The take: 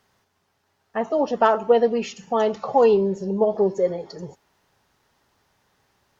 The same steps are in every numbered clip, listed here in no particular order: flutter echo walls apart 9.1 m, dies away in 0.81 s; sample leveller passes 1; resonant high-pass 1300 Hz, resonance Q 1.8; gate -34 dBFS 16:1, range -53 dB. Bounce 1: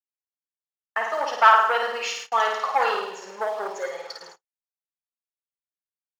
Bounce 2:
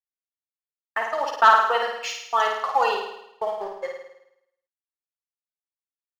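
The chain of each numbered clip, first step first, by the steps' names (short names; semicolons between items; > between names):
flutter echo > gate > sample leveller > resonant high-pass; resonant high-pass > gate > sample leveller > flutter echo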